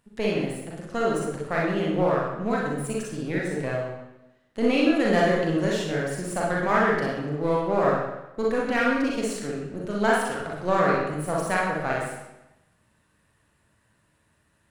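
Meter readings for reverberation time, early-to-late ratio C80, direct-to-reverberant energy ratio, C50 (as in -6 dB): 0.95 s, 3.5 dB, -4.5 dB, -0.5 dB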